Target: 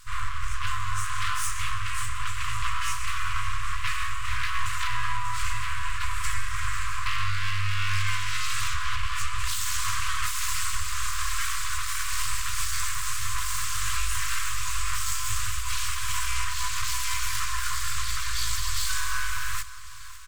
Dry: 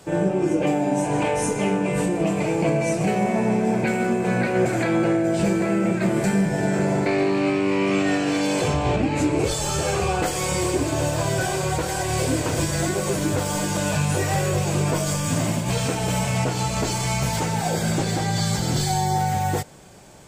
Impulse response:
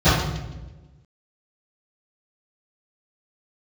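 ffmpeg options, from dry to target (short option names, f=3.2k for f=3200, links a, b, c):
-af "aecho=1:1:550|1100|1650|2200|2750|3300:0.15|0.0883|0.0521|0.0307|0.0181|0.0107,aeval=exprs='abs(val(0))':c=same,afftfilt=real='re*(1-between(b*sr/4096,110,980))':imag='im*(1-between(b*sr/4096,110,980))':win_size=4096:overlap=0.75"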